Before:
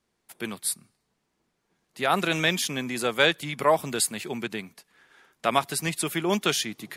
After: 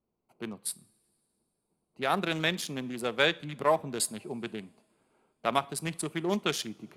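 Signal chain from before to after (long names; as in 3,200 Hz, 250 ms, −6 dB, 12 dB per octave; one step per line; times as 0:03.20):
adaptive Wiener filter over 25 samples
coupled-rooms reverb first 0.4 s, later 2.9 s, from −20 dB, DRR 18 dB
level −4 dB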